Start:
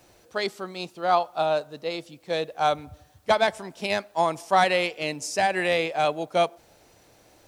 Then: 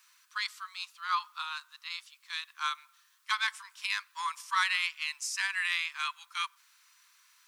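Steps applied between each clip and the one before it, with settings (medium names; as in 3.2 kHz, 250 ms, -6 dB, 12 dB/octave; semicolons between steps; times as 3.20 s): steep high-pass 1 kHz 96 dB/octave; trim -2.5 dB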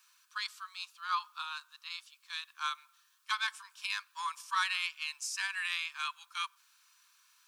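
band-stop 2 kHz, Q 6.1; trim -2.5 dB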